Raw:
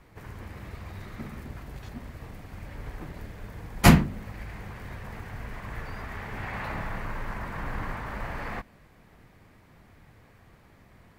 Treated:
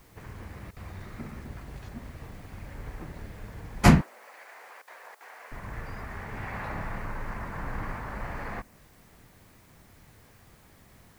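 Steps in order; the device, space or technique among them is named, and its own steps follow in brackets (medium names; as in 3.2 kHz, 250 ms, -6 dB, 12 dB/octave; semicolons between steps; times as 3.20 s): worn cassette (low-pass 8.4 kHz; wow and flutter; level dips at 0.71/4.82/5.15 s, 54 ms -16 dB; white noise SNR 31 dB); dynamic bell 3.3 kHz, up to -5 dB, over -56 dBFS, Q 1.5; 4.01–5.52 s: high-pass 530 Hz 24 dB/octave; trim -1 dB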